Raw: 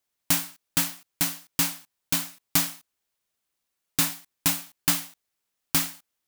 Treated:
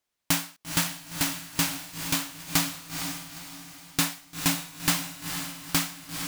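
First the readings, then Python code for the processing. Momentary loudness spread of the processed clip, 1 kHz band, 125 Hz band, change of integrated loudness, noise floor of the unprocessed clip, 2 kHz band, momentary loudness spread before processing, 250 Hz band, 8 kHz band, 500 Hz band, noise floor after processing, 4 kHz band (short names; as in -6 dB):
7 LU, +2.5 dB, +3.0 dB, -2.5 dB, -81 dBFS, +2.0 dB, 5 LU, +2.5 dB, -1.0 dB, +2.5 dB, -82 dBFS, +1.0 dB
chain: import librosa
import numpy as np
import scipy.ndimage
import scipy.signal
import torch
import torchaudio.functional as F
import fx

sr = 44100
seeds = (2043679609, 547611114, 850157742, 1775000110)

p1 = fx.high_shelf(x, sr, hz=8400.0, db=-8.0)
p2 = p1 + fx.echo_diffused(p1, sr, ms=467, feedback_pct=41, wet_db=-6, dry=0)
y = p2 * librosa.db_to_amplitude(1.5)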